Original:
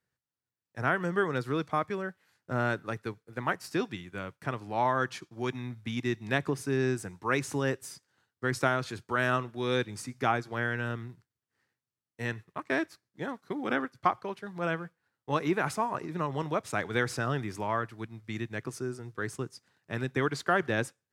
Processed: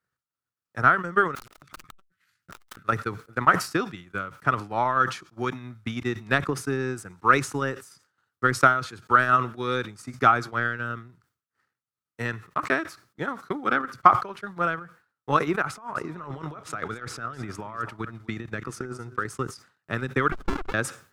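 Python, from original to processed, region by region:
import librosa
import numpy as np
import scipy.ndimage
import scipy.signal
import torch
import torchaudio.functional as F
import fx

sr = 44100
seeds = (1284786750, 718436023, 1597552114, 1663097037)

y = fx.chain(x, sr, fx.curve_eq(hz=(120.0, 680.0, 2000.0), db=(0, -20, 0)),
    fx.overflow_wrap(gain_db=38.5),
    fx.transformer_sat(knee_hz=450.0), at=(1.35, 2.89))
y = fx.chain(y, sr, fx.high_shelf(hz=8100.0, db=-6.0),
    fx.over_compress(threshold_db=-37.0, ratio=-1.0),
    fx.echo_single(ms=258, db=-16.0), at=(15.62, 19.25))
y = fx.chain(y, sr, fx.sine_speech(),
    fx.running_max(window=65), at=(20.32, 20.74))
y = fx.peak_eq(y, sr, hz=1300.0, db=12.0, octaves=0.43)
y = fx.transient(y, sr, attack_db=8, sustain_db=-8)
y = fx.sustainer(y, sr, db_per_s=140.0)
y = y * 10.0 ** (-2.0 / 20.0)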